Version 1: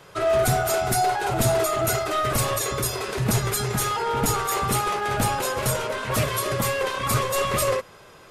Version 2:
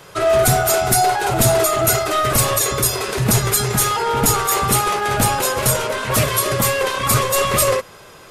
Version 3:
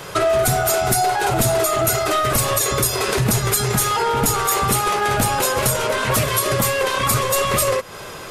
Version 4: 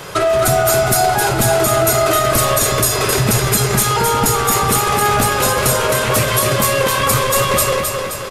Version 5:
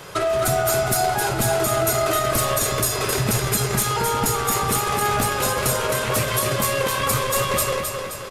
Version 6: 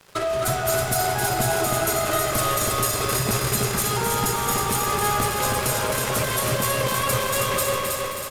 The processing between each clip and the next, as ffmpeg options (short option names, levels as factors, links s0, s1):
-af "highshelf=f=5400:g=5.5,volume=1.88"
-af "acompressor=threshold=0.0501:ratio=4,volume=2.66"
-af "aecho=1:1:263|526|789|1052|1315|1578|1841:0.562|0.292|0.152|0.0791|0.0411|0.0214|0.0111,volume=1.33"
-af "aeval=exprs='0.891*(cos(1*acos(clip(val(0)/0.891,-1,1)))-cos(1*PI/2))+0.0224*(cos(7*acos(clip(val(0)/0.891,-1,1)))-cos(7*PI/2))':c=same,volume=0.501"
-af "aeval=exprs='sgn(val(0))*max(abs(val(0))-0.015,0)':c=same,aecho=1:1:320|640|960|1280|1600|1920:0.668|0.321|0.154|0.0739|0.0355|0.017,volume=0.794"